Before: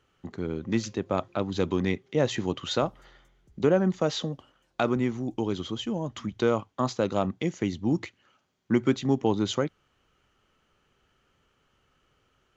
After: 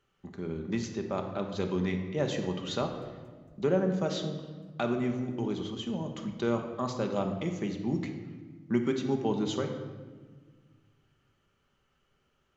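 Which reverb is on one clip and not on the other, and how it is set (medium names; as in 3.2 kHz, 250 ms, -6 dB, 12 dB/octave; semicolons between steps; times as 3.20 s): simulated room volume 1400 m³, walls mixed, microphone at 1.2 m; trim -6.5 dB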